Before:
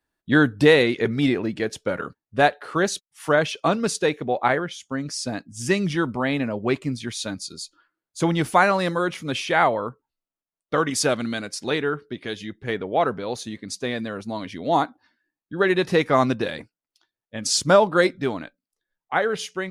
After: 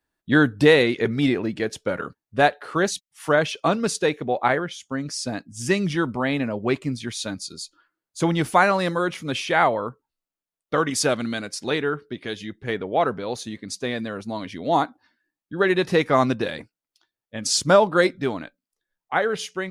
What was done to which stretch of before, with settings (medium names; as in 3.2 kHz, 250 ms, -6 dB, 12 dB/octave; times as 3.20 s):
2.91–3.11 s: spectral selection erased 290–1800 Hz